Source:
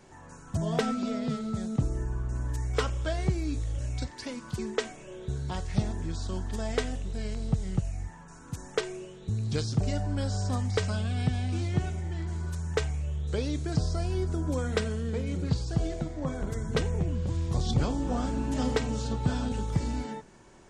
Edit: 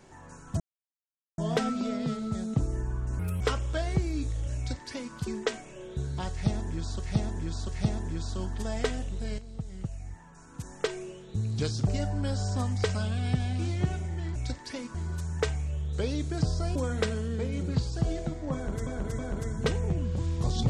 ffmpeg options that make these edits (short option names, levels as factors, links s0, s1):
-filter_complex "[0:a]asplit=12[s0][s1][s2][s3][s4][s5][s6][s7][s8][s9][s10][s11];[s0]atrim=end=0.6,asetpts=PTS-STARTPTS,afade=t=out:st=0.596:d=0.004:c=hsin,apad=pad_dur=0.78[s12];[s1]atrim=start=0.6:end=2.414,asetpts=PTS-STARTPTS,afade=t=in:d=0.004:c=hsin[s13];[s2]atrim=start=2.41:end=2.72,asetpts=PTS-STARTPTS,asetrate=63504,aresample=44100[s14];[s3]atrim=start=2.716:end=6.312[s15];[s4]atrim=start=5.618:end=6.312[s16];[s5]atrim=start=5.618:end=7.32,asetpts=PTS-STARTPTS,afade=t=out:st=1.698:d=0.004:c=hsin:silence=0.237137[s17];[s6]atrim=start=7.32:end=12.292,asetpts=PTS-STARTPTS,afade=t=in:d=1.62:silence=0.237137[s18];[s7]atrim=start=3.878:end=4.472[s19];[s8]atrim=start=12.288:end=14.102[s20];[s9]atrim=start=14.498:end=16.612[s21];[s10]atrim=start=16.288:end=16.612[s22];[s11]atrim=start=16.288[s23];[s12][s13]concat=n=2:v=0:a=1[s24];[s24][s14]acrossfade=d=0.004:c1=hsin:c2=hsin[s25];[s25][s15]acrossfade=d=0.004:c1=hsin:c2=hsin[s26];[s26][s16]acrossfade=d=0.004:c1=hsin:c2=hsin[s27];[s17][s18]concat=n=2:v=0:a=1[s28];[s27][s28]acrossfade=d=0.004:c1=hsin:c2=hsin[s29];[s29][s19]acrossfade=d=0.004:c1=hsin:c2=hsin[s30];[s30][s20]acrossfade=d=0.004:c1=hsin:c2=hsin[s31];[s31][s21]acrossfade=d=0.004:c1=hsin:c2=hsin[s32];[s32][s22]acrossfade=d=0.004:c1=hsin:c2=hsin[s33];[s33][s23]acrossfade=d=0.004:c1=hsin:c2=hsin"